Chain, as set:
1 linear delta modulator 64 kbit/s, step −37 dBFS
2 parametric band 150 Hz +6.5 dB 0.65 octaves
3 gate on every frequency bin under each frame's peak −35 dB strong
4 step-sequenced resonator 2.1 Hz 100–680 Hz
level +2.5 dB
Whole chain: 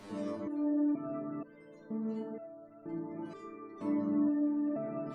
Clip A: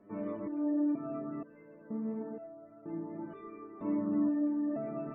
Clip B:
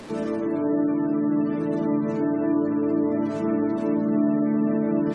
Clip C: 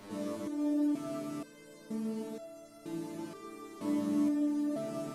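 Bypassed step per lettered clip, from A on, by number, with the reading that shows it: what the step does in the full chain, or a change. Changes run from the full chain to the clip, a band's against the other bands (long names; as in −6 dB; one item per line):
1, 2 kHz band −1.5 dB
4, 250 Hz band −3.5 dB
3, 2 kHz band +3.5 dB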